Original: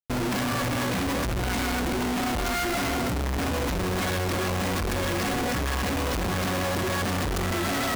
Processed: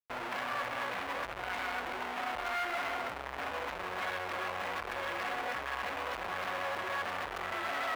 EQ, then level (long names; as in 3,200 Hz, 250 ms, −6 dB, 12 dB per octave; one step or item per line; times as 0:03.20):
three-way crossover with the lows and the highs turned down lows −22 dB, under 550 Hz, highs −17 dB, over 3,100 Hz
−4.0 dB